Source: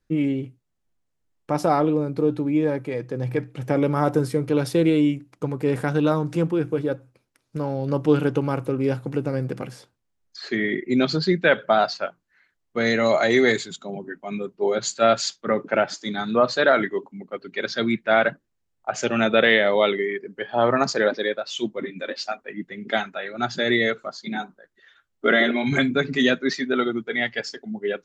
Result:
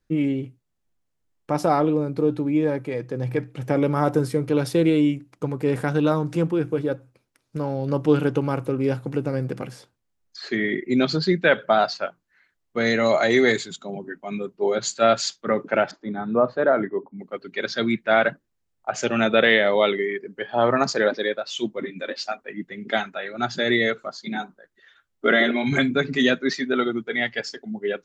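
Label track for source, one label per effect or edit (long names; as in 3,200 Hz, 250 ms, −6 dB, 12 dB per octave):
15.910000	17.190000	low-pass filter 1,100 Hz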